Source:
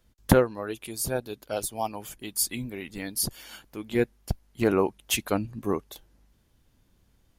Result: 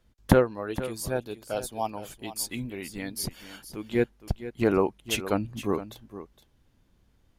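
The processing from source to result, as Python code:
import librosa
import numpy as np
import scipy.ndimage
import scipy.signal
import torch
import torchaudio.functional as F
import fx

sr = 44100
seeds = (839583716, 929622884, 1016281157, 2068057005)

y = fx.high_shelf(x, sr, hz=6100.0, db=-8.5)
y = y + 10.0 ** (-13.5 / 20.0) * np.pad(y, (int(465 * sr / 1000.0), 0))[:len(y)]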